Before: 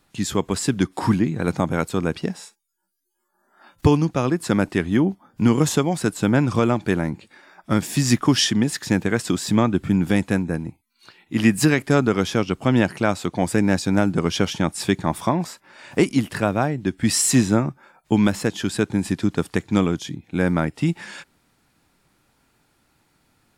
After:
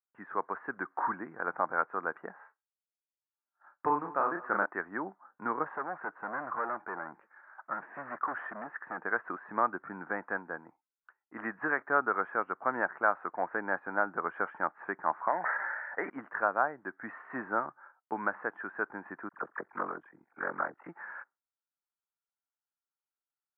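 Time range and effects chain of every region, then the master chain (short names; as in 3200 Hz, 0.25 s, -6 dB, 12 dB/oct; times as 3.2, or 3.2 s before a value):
2.36–4.66 doubler 35 ms -4 dB + echo 0.186 s -19 dB
5.64–8.98 hard clip -20.5 dBFS + mismatched tape noise reduction encoder only
15.28–16.1 speaker cabinet 230–2300 Hz, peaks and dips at 250 Hz -6 dB, 360 Hz -5 dB, 1100 Hz -9 dB, 1900 Hz +10 dB + sustainer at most 26 dB/s
19.29–20.89 dispersion lows, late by 41 ms, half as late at 1300 Hz + ring modulator 23 Hz + Doppler distortion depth 0.21 ms
whole clip: steep low-pass 1600 Hz 48 dB/oct; expander -43 dBFS; HPF 1100 Hz 12 dB/oct; gain +1.5 dB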